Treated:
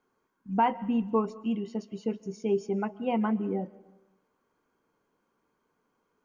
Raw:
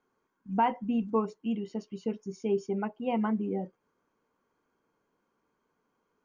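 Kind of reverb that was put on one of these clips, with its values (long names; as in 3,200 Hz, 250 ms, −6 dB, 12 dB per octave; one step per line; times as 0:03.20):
comb and all-pass reverb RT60 1 s, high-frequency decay 0.75×, pre-delay 100 ms, DRR 19.5 dB
level +1.5 dB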